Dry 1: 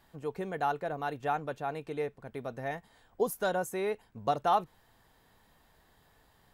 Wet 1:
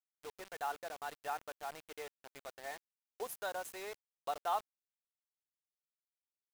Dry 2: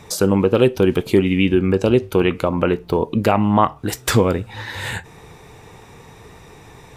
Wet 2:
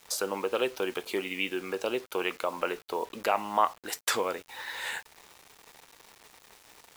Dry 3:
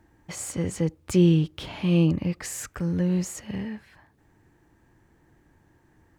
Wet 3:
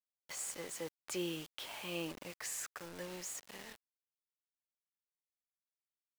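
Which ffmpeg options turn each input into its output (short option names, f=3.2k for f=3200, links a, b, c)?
-af "highpass=630,acrusher=bits=6:mix=0:aa=0.000001,volume=-7dB"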